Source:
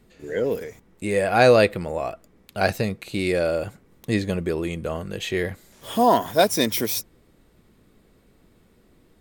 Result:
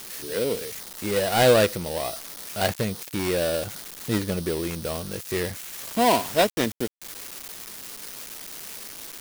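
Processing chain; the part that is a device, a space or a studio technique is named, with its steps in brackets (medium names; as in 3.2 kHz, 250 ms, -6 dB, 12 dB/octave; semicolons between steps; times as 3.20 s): budget class-D amplifier (dead-time distortion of 0.2 ms; zero-crossing glitches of -16 dBFS); trim -2 dB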